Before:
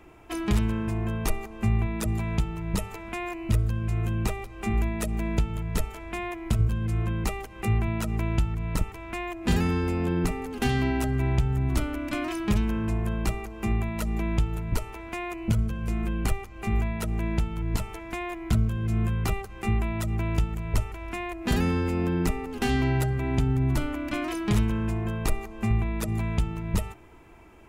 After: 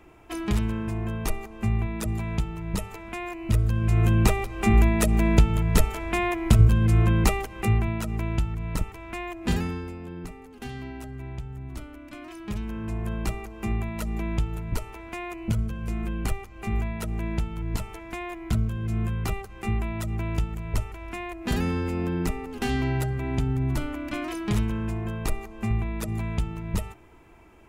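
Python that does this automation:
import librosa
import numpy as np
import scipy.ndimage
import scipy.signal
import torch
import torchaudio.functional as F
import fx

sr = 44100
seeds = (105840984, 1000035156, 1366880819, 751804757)

y = fx.gain(x, sr, db=fx.line((3.37, -1.0), (4.06, 7.5), (7.26, 7.5), (8.02, -1.0), (9.5, -1.0), (10.0, -12.0), (12.19, -12.0), (13.12, -1.5)))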